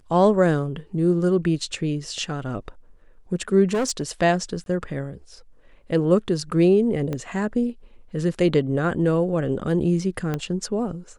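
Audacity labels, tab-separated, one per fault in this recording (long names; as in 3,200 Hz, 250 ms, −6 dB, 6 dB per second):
3.730000	4.100000	clipping −19.5 dBFS
4.640000	4.660000	drop-out 22 ms
7.130000	7.130000	click −16 dBFS
10.340000	10.340000	click −13 dBFS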